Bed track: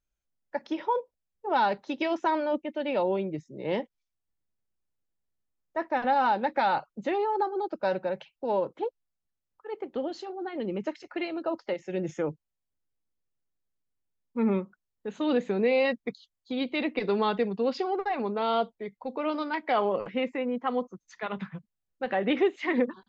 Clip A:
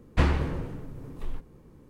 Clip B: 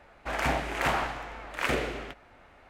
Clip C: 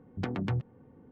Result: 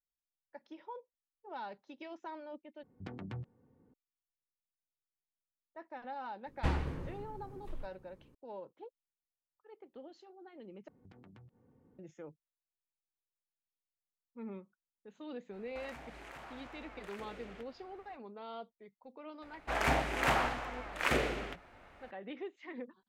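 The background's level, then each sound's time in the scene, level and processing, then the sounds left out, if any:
bed track -19 dB
2.83 s: replace with C -12 dB
6.46 s: add A -10 dB
10.88 s: replace with C -11 dB + compression 8:1, threshold -44 dBFS
15.50 s: add B -7.5 dB, fades 0.05 s + compression, threshold -40 dBFS
19.42 s: add B -2.5 dB

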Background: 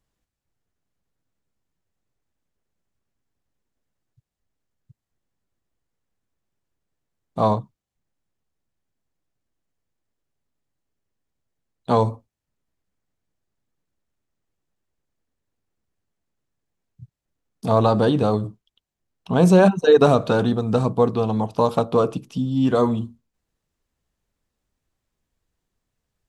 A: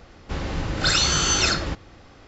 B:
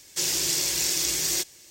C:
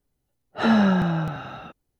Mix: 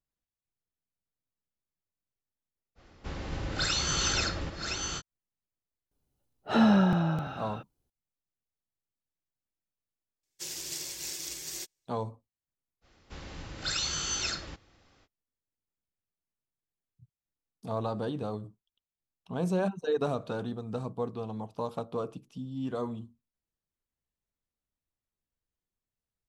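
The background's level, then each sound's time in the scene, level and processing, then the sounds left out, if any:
background -15.5 dB
2.75 s: add A -9.5 dB, fades 0.05 s + chunks repeated in reverse 569 ms, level -4.5 dB
5.91 s: add C -3.5 dB + peaking EQ 1.9 kHz -7 dB 0.39 oct
10.23 s: add B -11 dB + upward expansion 2.5:1, over -40 dBFS
12.81 s: add A -16.5 dB, fades 0.05 s + treble shelf 2.1 kHz +7 dB

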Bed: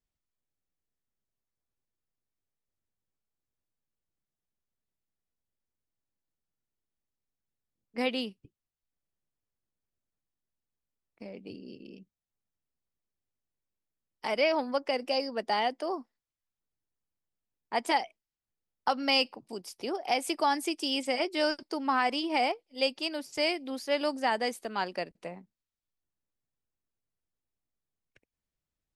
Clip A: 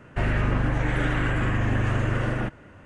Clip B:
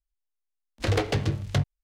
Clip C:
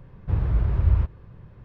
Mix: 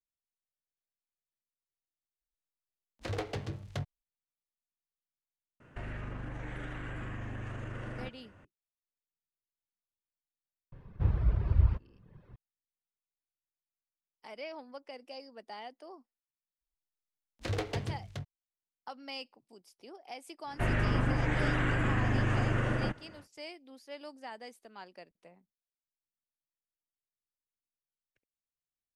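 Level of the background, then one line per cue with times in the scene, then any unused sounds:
bed -16.5 dB
2.21 s: add B -13 dB + peaking EQ 800 Hz +3.5 dB 2.2 oct
5.60 s: add A -10 dB + compression, threshold -26 dBFS
10.72 s: add C -4 dB + reverb removal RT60 0.99 s
16.61 s: add B -9.5 dB + fade out at the end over 0.59 s
20.43 s: add A -4.5 dB, fades 0.10 s + peaking EQ 63 Hz -9.5 dB 0.49 oct

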